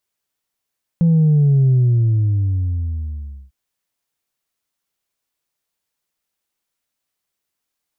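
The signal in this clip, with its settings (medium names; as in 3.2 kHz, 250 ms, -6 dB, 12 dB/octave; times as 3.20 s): sub drop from 170 Hz, over 2.50 s, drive 1 dB, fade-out 1.82 s, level -10.5 dB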